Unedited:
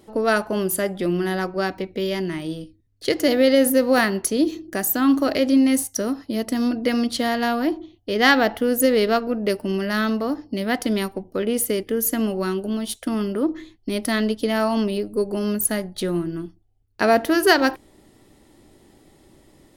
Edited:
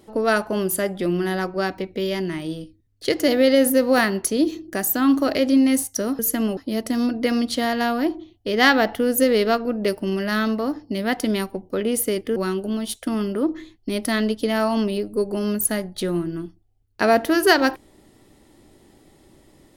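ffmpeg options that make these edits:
ffmpeg -i in.wav -filter_complex "[0:a]asplit=4[link_01][link_02][link_03][link_04];[link_01]atrim=end=6.192[link_05];[link_02]atrim=start=11.978:end=12.362[link_06];[link_03]atrim=start=6.188:end=11.982[link_07];[link_04]atrim=start=12.358[link_08];[link_05][link_06]acrossfade=duration=0.004:curve1=hsin:curve2=hsin[link_09];[link_09][link_07]acrossfade=duration=0.004:curve1=hsin:curve2=hsin[link_10];[link_10][link_08]acrossfade=duration=0.004:curve1=hsin:curve2=hsin" out.wav

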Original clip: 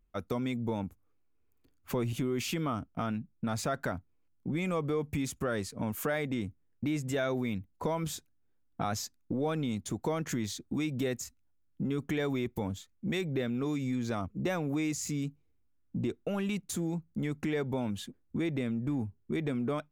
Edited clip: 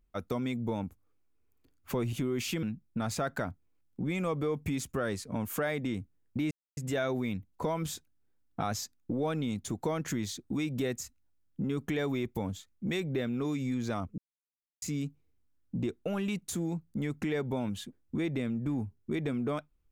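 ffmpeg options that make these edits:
ffmpeg -i in.wav -filter_complex "[0:a]asplit=5[link_01][link_02][link_03][link_04][link_05];[link_01]atrim=end=2.632[link_06];[link_02]atrim=start=3.098:end=6.98,asetpts=PTS-STARTPTS,afade=type=out:start_time=3.878:duration=0.004:curve=hsin,apad=pad_dur=0.26[link_07];[link_03]atrim=start=6.98:end=14.39,asetpts=PTS-STARTPTS,afade=type=in:duration=0.004:curve=hsin,afade=type=out:start_time=7.406:duration=0.004:curve=hsin[link_08];[link_04]atrim=start=14.39:end=15.03,asetpts=PTS-STARTPTS,volume=0[link_09];[link_05]atrim=start=15.03,asetpts=PTS-STARTPTS,afade=type=in:duration=0.004:curve=hsin[link_10];[link_07][link_08][link_09][link_10]concat=n=4:v=0:a=1[link_11];[link_06][link_11]acrossfade=duration=0.004:curve1=hsin:curve2=hsin" out.wav

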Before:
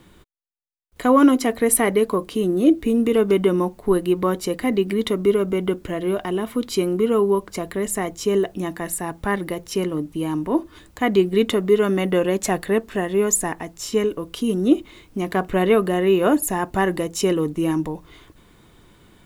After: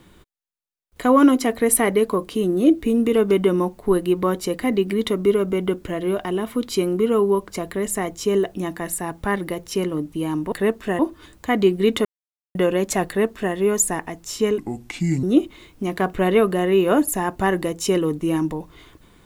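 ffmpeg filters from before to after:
ffmpeg -i in.wav -filter_complex "[0:a]asplit=7[link_01][link_02][link_03][link_04][link_05][link_06][link_07];[link_01]atrim=end=10.522[link_08];[link_02]atrim=start=12.598:end=13.072[link_09];[link_03]atrim=start=10.518:end=11.58,asetpts=PTS-STARTPTS,afade=type=out:start_time=1.058:duration=0.004:curve=hsin[link_10];[link_04]atrim=start=11.58:end=12.08,asetpts=PTS-STARTPTS,volume=0[link_11];[link_05]atrim=start=12.08:end=14.114,asetpts=PTS-STARTPTS,afade=type=in:duration=0.004:curve=hsin[link_12];[link_06]atrim=start=14.11:end=14.58,asetpts=PTS-STARTPTS,asetrate=31752,aresample=44100[link_13];[link_07]atrim=start=14.576[link_14];[link_08][link_09]acrossfade=duration=0.004:curve1=hsin:curve2=hsin[link_15];[link_10][link_11][link_12]concat=n=3:v=0:a=1[link_16];[link_15][link_16]acrossfade=duration=0.004:curve1=hsin:curve2=hsin[link_17];[link_17][link_13]acrossfade=duration=0.004:curve1=hsin:curve2=hsin[link_18];[link_18][link_14]acrossfade=duration=0.004:curve1=hsin:curve2=hsin" out.wav

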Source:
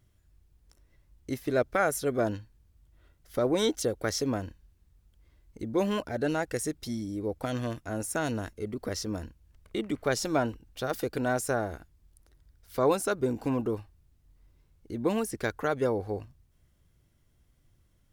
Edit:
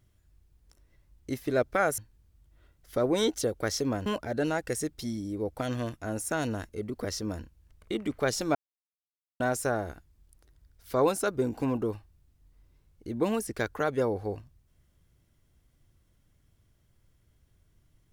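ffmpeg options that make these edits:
ffmpeg -i in.wav -filter_complex "[0:a]asplit=5[link_01][link_02][link_03][link_04][link_05];[link_01]atrim=end=1.982[link_06];[link_02]atrim=start=2.388:end=4.472[link_07];[link_03]atrim=start=5.898:end=10.39,asetpts=PTS-STARTPTS,afade=type=out:start_time=4.488:duration=0.004:curve=hsin[link_08];[link_04]atrim=start=10.39:end=11.24,asetpts=PTS-STARTPTS,volume=0[link_09];[link_05]atrim=start=11.24,asetpts=PTS-STARTPTS,afade=type=in:duration=0.004:curve=hsin[link_10];[link_06][link_07]acrossfade=duration=0.004:curve1=hsin:curve2=hsin[link_11];[link_08][link_09][link_10]concat=n=3:v=0:a=1[link_12];[link_11][link_12]acrossfade=duration=0.004:curve1=hsin:curve2=hsin" out.wav

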